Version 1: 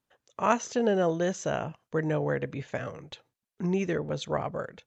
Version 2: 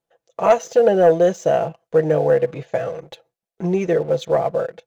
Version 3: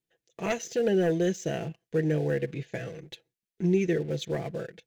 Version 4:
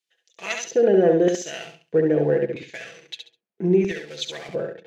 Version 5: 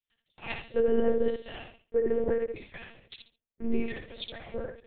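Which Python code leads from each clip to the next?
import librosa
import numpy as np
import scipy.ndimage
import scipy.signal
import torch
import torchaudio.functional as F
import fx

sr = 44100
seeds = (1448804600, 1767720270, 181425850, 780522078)

y1 = fx.band_shelf(x, sr, hz=560.0, db=10.5, octaves=1.2)
y1 = y1 + 0.62 * np.pad(y1, (int(6.0 * sr / 1000.0), 0))[:len(y1)]
y1 = fx.leveller(y1, sr, passes=1)
y1 = y1 * librosa.db_to_amplitude(-1.5)
y2 = fx.band_shelf(y1, sr, hz=820.0, db=-15.0, octaves=1.7)
y2 = y2 * librosa.db_to_amplitude(-3.0)
y3 = fx.filter_lfo_bandpass(y2, sr, shape='square', hz=0.78, low_hz=580.0, high_hz=3900.0, q=0.79)
y3 = fx.echo_feedback(y3, sr, ms=68, feedback_pct=23, wet_db=-5.0)
y3 = y3 * librosa.db_to_amplitude(9.0)
y4 = fx.lpc_monotone(y3, sr, seeds[0], pitch_hz=230.0, order=8)
y4 = y4 * librosa.db_to_amplitude(-7.5)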